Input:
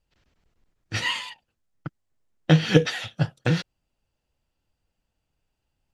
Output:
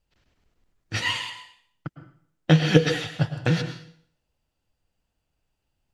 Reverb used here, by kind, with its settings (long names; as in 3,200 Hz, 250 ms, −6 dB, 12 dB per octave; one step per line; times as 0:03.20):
dense smooth reverb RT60 0.57 s, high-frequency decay 1×, pre-delay 95 ms, DRR 9 dB